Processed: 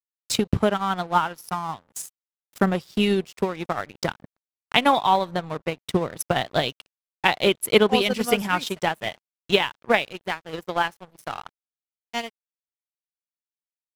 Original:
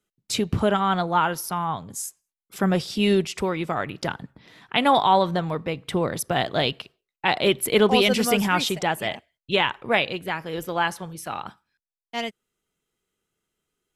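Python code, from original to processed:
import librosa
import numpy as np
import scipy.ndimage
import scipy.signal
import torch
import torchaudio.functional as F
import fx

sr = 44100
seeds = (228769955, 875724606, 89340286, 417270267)

y = np.sign(x) * np.maximum(np.abs(x) - 10.0 ** (-36.5 / 20.0), 0.0)
y = fx.transient(y, sr, attack_db=8, sustain_db=-6)
y = F.gain(torch.from_numpy(y), -2.5).numpy()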